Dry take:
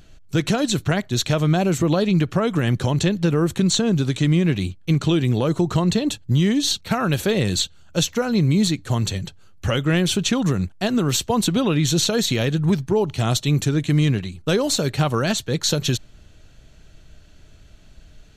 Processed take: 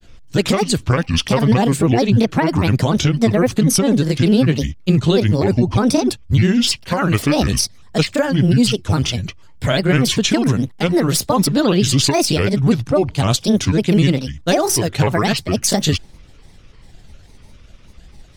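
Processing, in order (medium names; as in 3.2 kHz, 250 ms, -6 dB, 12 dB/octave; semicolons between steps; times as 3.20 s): granulator, spray 16 ms, pitch spread up and down by 7 st; trim +5.5 dB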